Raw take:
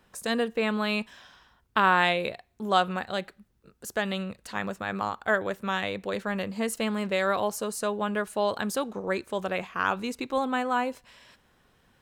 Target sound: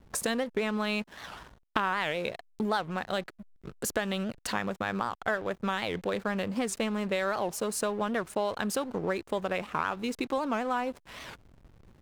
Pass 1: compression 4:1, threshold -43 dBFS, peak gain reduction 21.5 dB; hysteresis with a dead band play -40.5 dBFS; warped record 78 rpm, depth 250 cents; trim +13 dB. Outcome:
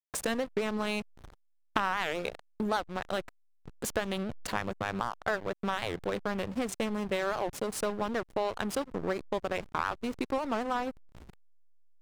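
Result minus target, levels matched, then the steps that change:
hysteresis with a dead band: distortion +11 dB
change: hysteresis with a dead band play -52 dBFS

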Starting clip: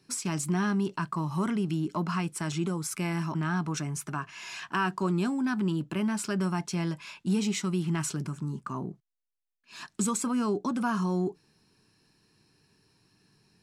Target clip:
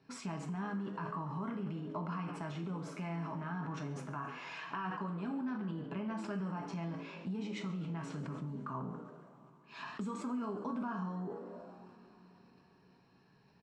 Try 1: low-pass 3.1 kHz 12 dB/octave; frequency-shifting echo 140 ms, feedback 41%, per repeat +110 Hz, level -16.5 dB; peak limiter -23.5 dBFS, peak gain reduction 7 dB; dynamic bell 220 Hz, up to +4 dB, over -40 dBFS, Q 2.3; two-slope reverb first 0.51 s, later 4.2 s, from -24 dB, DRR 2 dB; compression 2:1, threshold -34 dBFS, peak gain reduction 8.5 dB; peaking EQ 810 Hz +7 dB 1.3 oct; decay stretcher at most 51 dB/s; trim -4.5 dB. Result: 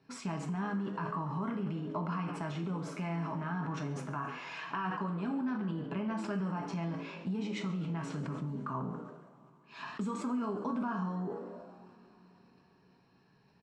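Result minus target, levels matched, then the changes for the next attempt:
compression: peak gain reduction -4 dB
change: compression 2:1, threshold -41.5 dBFS, peak gain reduction 12 dB

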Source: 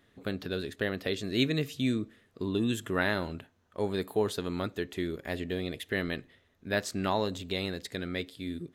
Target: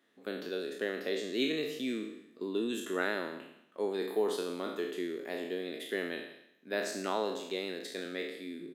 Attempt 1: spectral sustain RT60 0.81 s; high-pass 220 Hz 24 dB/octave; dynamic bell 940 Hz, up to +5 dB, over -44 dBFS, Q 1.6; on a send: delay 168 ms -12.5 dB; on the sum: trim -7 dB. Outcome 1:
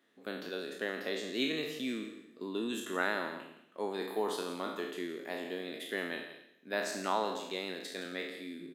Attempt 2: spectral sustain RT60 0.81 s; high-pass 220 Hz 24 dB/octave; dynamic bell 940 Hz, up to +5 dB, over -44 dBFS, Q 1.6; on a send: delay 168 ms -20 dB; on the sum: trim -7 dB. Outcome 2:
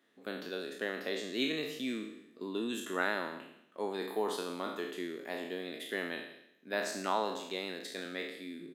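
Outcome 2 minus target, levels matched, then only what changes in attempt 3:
1 kHz band +4.5 dB
change: dynamic bell 410 Hz, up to +5 dB, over -44 dBFS, Q 1.6

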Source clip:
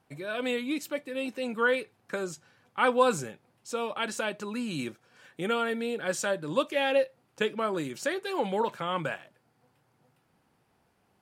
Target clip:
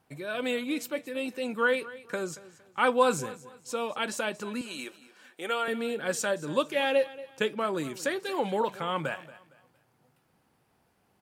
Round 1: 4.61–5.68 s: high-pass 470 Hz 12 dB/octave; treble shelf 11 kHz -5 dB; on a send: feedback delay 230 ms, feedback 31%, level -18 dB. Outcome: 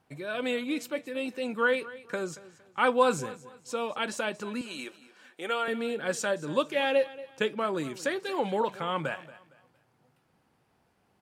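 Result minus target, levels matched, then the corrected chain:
8 kHz band -2.5 dB
4.61–5.68 s: high-pass 470 Hz 12 dB/octave; treble shelf 11 kHz +5.5 dB; on a send: feedback delay 230 ms, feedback 31%, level -18 dB

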